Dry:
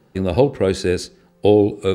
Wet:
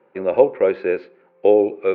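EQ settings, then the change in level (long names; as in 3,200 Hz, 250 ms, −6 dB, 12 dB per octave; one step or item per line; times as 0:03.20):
high-frequency loss of the air 100 metres
loudspeaker in its box 320–2,600 Hz, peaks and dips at 370 Hz +4 dB, 540 Hz +10 dB, 960 Hz +8 dB, 1,400 Hz +4 dB, 2,300 Hz +10 dB
−4.0 dB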